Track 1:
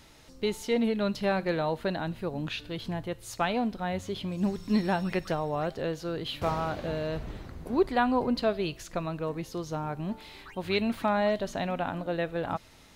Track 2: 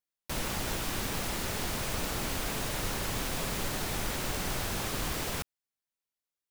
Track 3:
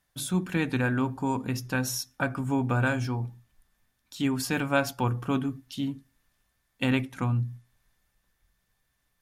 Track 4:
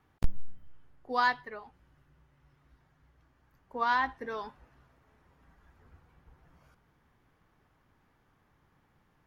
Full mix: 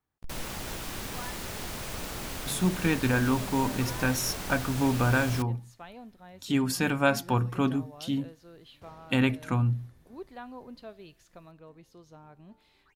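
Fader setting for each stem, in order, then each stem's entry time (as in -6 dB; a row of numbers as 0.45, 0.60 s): -18.0, -3.5, +1.0, -17.0 dB; 2.40, 0.00, 2.30, 0.00 s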